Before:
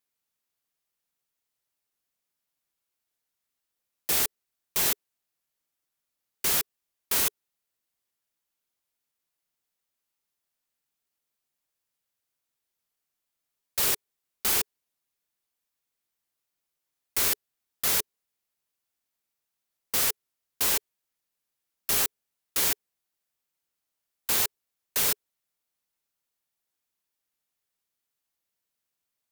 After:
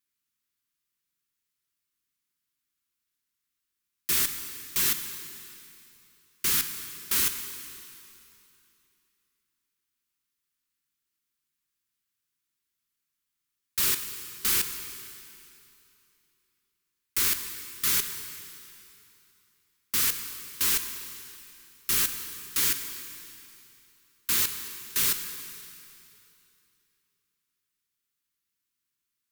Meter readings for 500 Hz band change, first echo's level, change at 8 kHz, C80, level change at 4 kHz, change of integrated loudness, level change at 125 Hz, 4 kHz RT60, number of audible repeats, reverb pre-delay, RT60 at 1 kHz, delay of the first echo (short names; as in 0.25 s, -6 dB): -7.0 dB, none, +0.5 dB, 8.5 dB, +0.5 dB, -0.5 dB, +0.5 dB, 2.7 s, none, 7 ms, 2.9 s, none